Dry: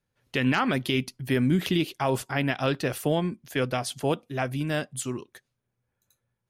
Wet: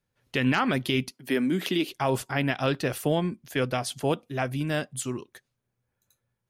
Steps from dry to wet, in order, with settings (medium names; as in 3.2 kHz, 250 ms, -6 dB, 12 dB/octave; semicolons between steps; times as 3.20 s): 1.11–1.89 s: high-pass 210 Hz 24 dB/octave